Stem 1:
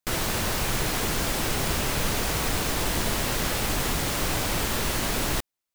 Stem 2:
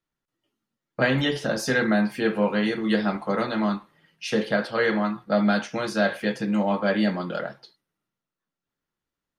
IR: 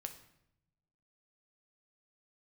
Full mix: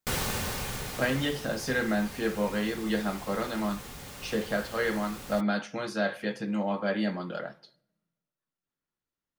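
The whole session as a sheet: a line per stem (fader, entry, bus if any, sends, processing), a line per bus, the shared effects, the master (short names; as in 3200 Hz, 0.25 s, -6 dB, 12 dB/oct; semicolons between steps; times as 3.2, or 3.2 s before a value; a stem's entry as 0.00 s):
+0.5 dB, 0.00 s, no send, notch comb 330 Hz; auto duck -16 dB, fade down 1.50 s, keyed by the second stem
-8.0 dB, 0.00 s, send -8.5 dB, dry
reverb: on, RT60 0.80 s, pre-delay 6 ms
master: dry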